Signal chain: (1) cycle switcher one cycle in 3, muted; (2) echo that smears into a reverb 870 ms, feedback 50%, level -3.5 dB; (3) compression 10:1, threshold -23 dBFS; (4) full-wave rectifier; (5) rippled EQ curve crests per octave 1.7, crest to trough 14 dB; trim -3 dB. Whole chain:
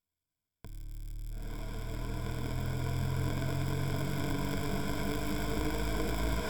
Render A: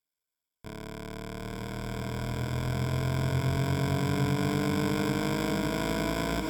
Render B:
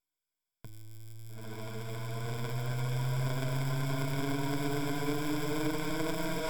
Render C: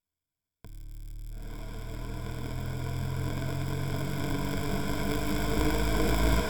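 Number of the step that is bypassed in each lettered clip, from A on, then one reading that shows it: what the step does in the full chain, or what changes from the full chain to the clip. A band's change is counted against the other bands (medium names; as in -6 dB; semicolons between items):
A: 4, crest factor change -1.5 dB; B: 1, momentary loudness spread change +4 LU; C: 3, mean gain reduction 2.0 dB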